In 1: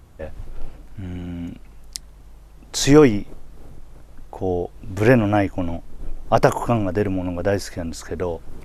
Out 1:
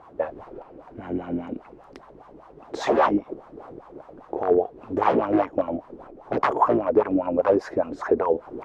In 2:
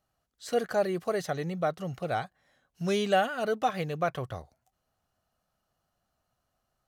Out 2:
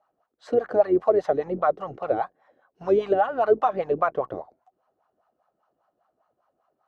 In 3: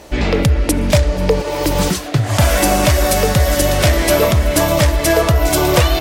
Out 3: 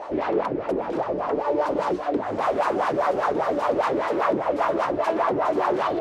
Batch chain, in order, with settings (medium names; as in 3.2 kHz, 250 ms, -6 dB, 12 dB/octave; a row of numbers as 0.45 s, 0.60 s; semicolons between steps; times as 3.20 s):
octave divider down 2 oct, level -3 dB; wavefolder -14 dBFS; treble shelf 9.4 kHz -9.5 dB; compression 4:1, threshold -27 dBFS; bass shelf 190 Hz -5 dB; wah-wah 5 Hz 320–1100 Hz, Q 3.6; normalise loudness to -24 LUFS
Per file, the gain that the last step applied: +18.5 dB, +18.0 dB, +14.5 dB